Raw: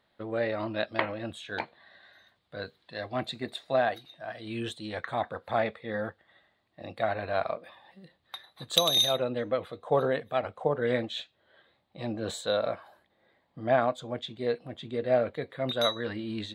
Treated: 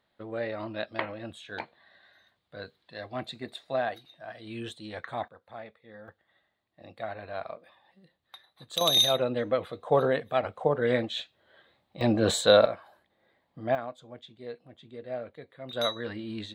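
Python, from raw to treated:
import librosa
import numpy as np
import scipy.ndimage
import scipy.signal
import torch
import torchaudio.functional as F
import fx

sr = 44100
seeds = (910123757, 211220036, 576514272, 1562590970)

y = fx.gain(x, sr, db=fx.steps((0.0, -3.5), (5.28, -15.5), (6.08, -7.5), (8.81, 2.0), (12.01, 9.5), (12.66, -1.5), (13.75, -11.0), (15.73, -2.0)))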